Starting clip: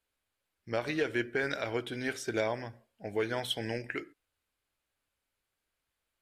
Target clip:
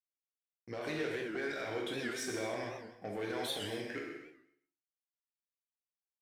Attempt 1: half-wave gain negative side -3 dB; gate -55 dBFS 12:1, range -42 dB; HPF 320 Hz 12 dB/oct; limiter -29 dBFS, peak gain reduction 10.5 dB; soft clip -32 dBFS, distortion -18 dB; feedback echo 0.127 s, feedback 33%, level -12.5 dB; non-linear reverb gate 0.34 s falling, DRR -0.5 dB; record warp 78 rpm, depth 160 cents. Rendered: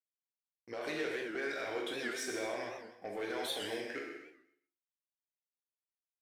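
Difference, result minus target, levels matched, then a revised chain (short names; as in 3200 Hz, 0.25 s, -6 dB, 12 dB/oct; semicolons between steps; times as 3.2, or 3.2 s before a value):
125 Hz band -10.0 dB
half-wave gain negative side -3 dB; gate -55 dBFS 12:1, range -42 dB; HPF 160 Hz 12 dB/oct; limiter -29 dBFS, peak gain reduction 11 dB; soft clip -32 dBFS, distortion -18 dB; feedback echo 0.127 s, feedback 33%, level -12.5 dB; non-linear reverb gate 0.34 s falling, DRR -0.5 dB; record warp 78 rpm, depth 160 cents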